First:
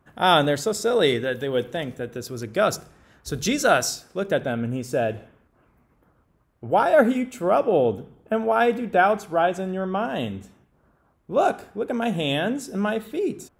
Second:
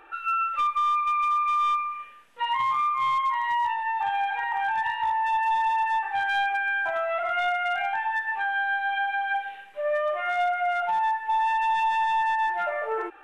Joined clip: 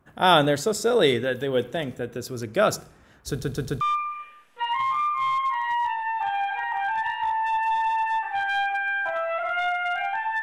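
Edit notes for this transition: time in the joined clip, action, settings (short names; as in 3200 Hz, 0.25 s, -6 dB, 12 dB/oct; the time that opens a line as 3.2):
first
3.29 stutter in place 0.13 s, 4 plays
3.81 switch to second from 1.61 s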